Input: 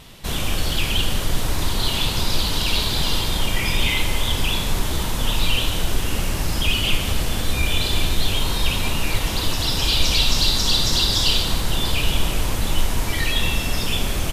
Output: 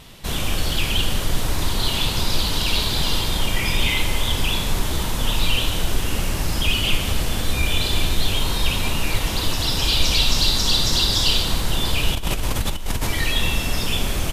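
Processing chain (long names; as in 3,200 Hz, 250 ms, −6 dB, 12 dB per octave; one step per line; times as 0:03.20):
0:12.15–0:13.07: compressor whose output falls as the input rises −22 dBFS, ratio −1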